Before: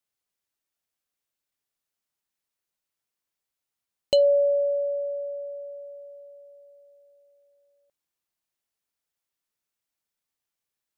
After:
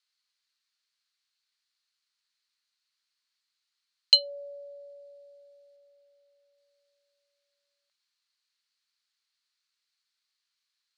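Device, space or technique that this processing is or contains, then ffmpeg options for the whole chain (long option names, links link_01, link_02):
headphones lying on a table: -filter_complex "[0:a]lowpass=6400,asettb=1/sr,asplit=3[link_01][link_02][link_03];[link_01]atrim=end=5.764[link_04];[link_02]atrim=start=5.76:end=6.58,asetpts=PTS-STARTPTS,afade=type=in:duration=0.004:curve=qsin,afade=type=out:start_time=0.816:duration=0.004:curve=qsin,highshelf=frequency=4800:gain=-6[link_05];[link_03]atrim=start=6.576[link_06];[link_04][link_05]acrossfade=duration=0.004:curve1=hsin:curve2=qsin[link_07];[link_07][link_06]acrossfade=duration=0.004:curve1=qsin:curve2=hsin,highpass=frequency=1200:width=0.5412,highpass=frequency=1200:width=1.3066,equalizer=frequency=4300:width_type=o:width=0.39:gain=12,volume=5dB"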